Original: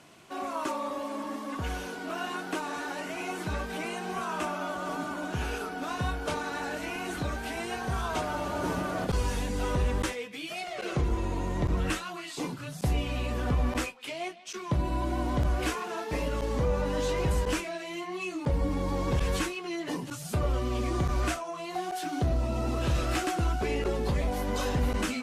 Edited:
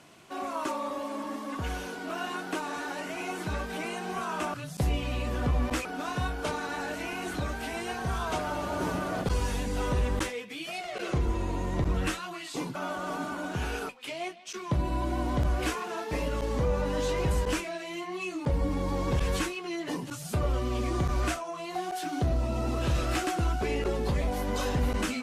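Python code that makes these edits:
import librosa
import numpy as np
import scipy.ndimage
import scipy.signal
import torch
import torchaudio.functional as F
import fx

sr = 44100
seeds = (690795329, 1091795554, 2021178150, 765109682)

y = fx.edit(x, sr, fx.swap(start_s=4.54, length_s=1.14, other_s=12.58, other_length_s=1.31), tone=tone)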